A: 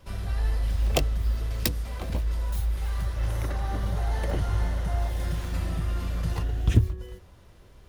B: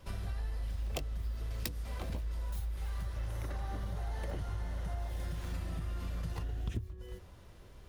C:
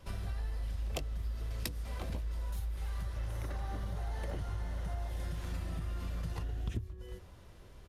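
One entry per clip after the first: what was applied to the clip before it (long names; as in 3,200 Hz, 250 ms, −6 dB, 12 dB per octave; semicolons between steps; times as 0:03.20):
downward compressor 5 to 1, threshold −33 dBFS, peak gain reduction 18.5 dB; level −2 dB
downsampling to 32,000 Hz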